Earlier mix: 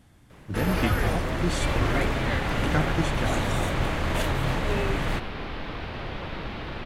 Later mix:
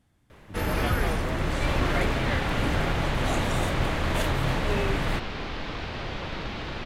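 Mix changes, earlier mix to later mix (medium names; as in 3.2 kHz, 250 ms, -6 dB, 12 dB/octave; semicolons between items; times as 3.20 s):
speech -11.0 dB; second sound: remove distance through air 140 m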